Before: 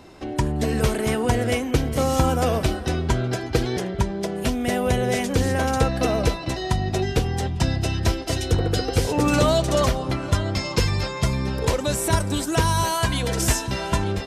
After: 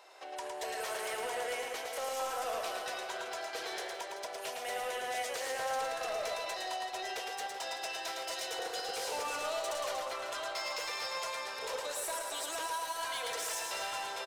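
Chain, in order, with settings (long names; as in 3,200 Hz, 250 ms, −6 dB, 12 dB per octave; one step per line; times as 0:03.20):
inverse Chebyshev high-pass filter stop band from 210 Hz, stop band 50 dB
brickwall limiter −20 dBFS, peak gain reduction 9 dB
soft clipping −27 dBFS, distortion −14 dB
reverse bouncing-ball delay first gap 110 ms, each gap 1.15×, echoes 5
level −6.5 dB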